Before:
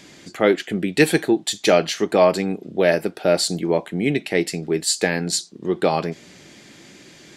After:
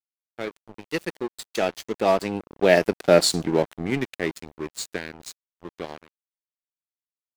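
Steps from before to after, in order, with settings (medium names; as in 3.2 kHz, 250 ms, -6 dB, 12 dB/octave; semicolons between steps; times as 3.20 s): Doppler pass-by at 3.05 s, 21 m/s, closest 11 m; crossover distortion -33.5 dBFS; trim +3 dB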